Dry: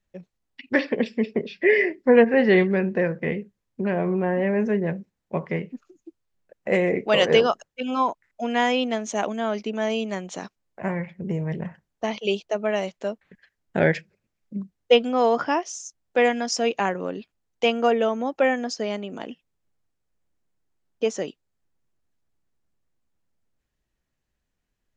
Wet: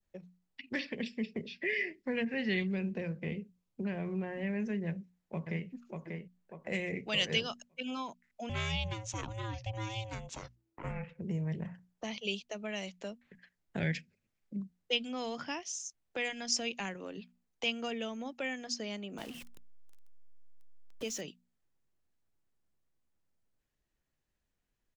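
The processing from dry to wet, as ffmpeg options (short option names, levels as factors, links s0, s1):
-filter_complex "[0:a]asettb=1/sr,asplit=3[s0][s1][s2];[s0]atrim=end=2.604[s3];[s1]atrim=start=2.6:end=3.84,asetpts=PTS-STARTPTS,afade=t=in:d=0.004:c=qsin,afade=t=out:st=1.236:d=0.004:c=qsin,equalizer=f=1800:w=3.3:g=-8.5[s4];[s2]atrim=start=3.836[s5];[s3][s4]acrossfade=d=0.004:c1=hsin:c2=qsin[s6];[s6][s5]acrossfade=d=0.004:c1=qsin:c2=hsin,asplit=2[s7][s8];[s8]afade=t=in:st=4.87:d=0.01,afade=t=out:st=5.68:d=0.01,aecho=0:1:590|1180|1770|2360:0.473151|0.141945|0.0425836|0.0127751[s9];[s7][s9]amix=inputs=2:normalize=0,asettb=1/sr,asplit=3[s10][s11][s12];[s10]atrim=end=8.494[s13];[s11]atrim=start=8.49:end=11.19,asetpts=PTS-STARTPTS,afade=t=in:d=0.004:c=qsin,afade=t=out:st=2.696:d=0.004:c=qsin,aeval=exprs='val(0)*sin(2*PI*330*n/s)':c=same[s14];[s12]atrim=start=11.186[s15];[s13][s14]acrossfade=d=0.004:c1=hsin:c2=qsin[s16];[s16][s15]acrossfade=d=0.004:c1=qsin:c2=hsin,asettb=1/sr,asplit=3[s17][s18][s19];[s17]atrim=end=19.184[s20];[s18]atrim=start=19.18:end=21.21,asetpts=PTS-STARTPTS,afade=t=in:d=0.004:c=qsin,afade=t=out:st=2.026:d=0.004:c=qsin,aeval=exprs='val(0)+0.5*0.0133*sgn(val(0))':c=same[s21];[s19]atrim=start=21.206[s22];[s20][s21]acrossfade=d=0.004:c1=hsin:c2=qsin[s23];[s23][s22]acrossfade=d=0.004:c1=qsin:c2=hsin,bandreject=f=60:t=h:w=6,bandreject=f=120:t=h:w=6,bandreject=f=180:t=h:w=6,bandreject=f=240:t=h:w=6,adynamicequalizer=threshold=0.0141:dfrequency=2300:dqfactor=1.2:tfrequency=2300:tqfactor=1.2:attack=5:release=100:ratio=0.375:range=3:mode=boostabove:tftype=bell,acrossover=split=190|3000[s24][s25][s26];[s25]acompressor=threshold=0.01:ratio=3[s27];[s24][s27][s26]amix=inputs=3:normalize=0,volume=0.596"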